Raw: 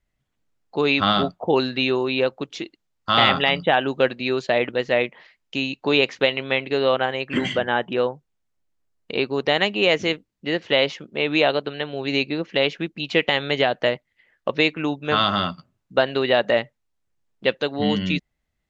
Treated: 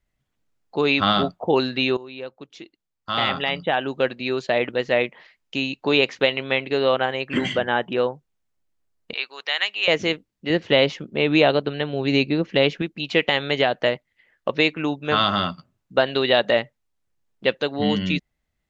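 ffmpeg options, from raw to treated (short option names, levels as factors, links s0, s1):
-filter_complex "[0:a]asettb=1/sr,asplit=3[s0][s1][s2];[s0]atrim=end=9.134[s3];[s1]atrim=start=9.13:end=9.88,asetpts=PTS-STARTPTS,afade=t=in:d=0.004:c=qsin,afade=t=out:st=0.746:d=0.004:c=qsin,highpass=1400[s4];[s2]atrim=start=9.876[s5];[s3][s4]acrossfade=d=0.004:c1=hsin:c2=qsin[s6];[s6][s5]acrossfade=d=0.004:c1=qsin:c2=hsin,asettb=1/sr,asplit=3[s7][s8][s9];[s7]atrim=end=10.504[s10];[s8]atrim=start=10.5:end=12.82,asetpts=PTS-STARTPTS,afade=t=in:d=0.004:c=qsin,afade=t=out:st=2.316:d=0.004:c=qsin,lowshelf=f=320:g=8.5[s11];[s9]atrim=start=12.816[s12];[s10][s11]acrossfade=d=0.004:c1=hsin:c2=qsin[s13];[s13][s12]acrossfade=d=0.004:c1=qsin:c2=hsin,asettb=1/sr,asplit=3[s14][s15][s16];[s14]atrim=end=16.054[s17];[s15]atrim=start=16.05:end=16.57,asetpts=PTS-STARTPTS,afade=t=in:d=0.004:c=qsin,afade=t=out:st=0.516:d=0.004:c=qsin,equalizer=f=3600:w=2.5:g=6.5[s18];[s16]atrim=start=16.566[s19];[s17][s18]acrossfade=d=0.004:c1=hsin:c2=qsin[s20];[s20][s19]acrossfade=d=0.004:c1=qsin:c2=hsin,asplit=2[s21][s22];[s21]atrim=end=1.97,asetpts=PTS-STARTPTS,afade=t=out:st=1.966:d=0.004:c=hsin:silence=0.141254[s23];[s22]atrim=start=1.97,asetpts=PTS-STARTPTS,afade=t=in:d=2.91:silence=0.141254[s24];[s23][s24]concat=n=2:v=0:a=1"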